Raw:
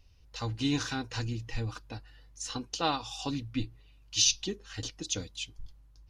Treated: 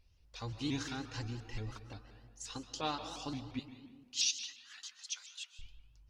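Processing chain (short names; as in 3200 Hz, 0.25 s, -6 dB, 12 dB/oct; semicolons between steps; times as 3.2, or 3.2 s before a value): 3.59–5.59 steep high-pass 990 Hz 36 dB/oct; reverb RT60 1.5 s, pre-delay 95 ms, DRR 9.5 dB; shaped vibrato saw up 5.7 Hz, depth 160 cents; gain -7.5 dB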